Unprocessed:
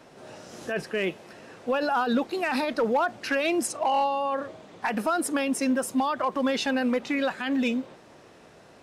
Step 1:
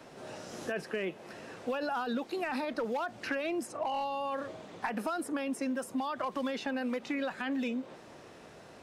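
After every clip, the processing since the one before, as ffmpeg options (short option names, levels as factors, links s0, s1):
-filter_complex "[0:a]acrossover=split=170|2200[s0][s1][s2];[s0]acompressor=threshold=0.002:ratio=4[s3];[s1]acompressor=threshold=0.0224:ratio=4[s4];[s2]acompressor=threshold=0.00398:ratio=4[s5];[s3][s4][s5]amix=inputs=3:normalize=0"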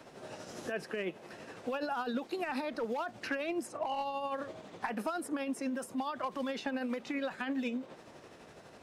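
-af "tremolo=f=12:d=0.41"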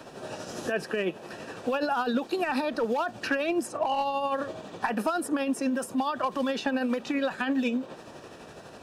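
-af "asuperstop=centerf=2100:order=4:qfactor=7.5,volume=2.51"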